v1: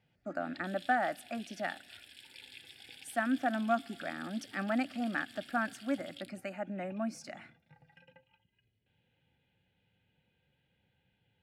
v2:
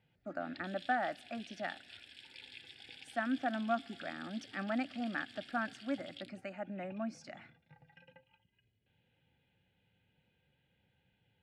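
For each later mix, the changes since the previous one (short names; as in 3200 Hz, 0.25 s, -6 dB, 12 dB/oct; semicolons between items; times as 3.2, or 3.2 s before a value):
speech -3.5 dB; master: add LPF 5800 Hz 12 dB/oct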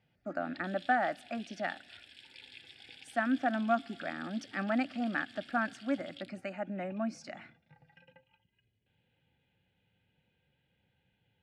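speech +4.5 dB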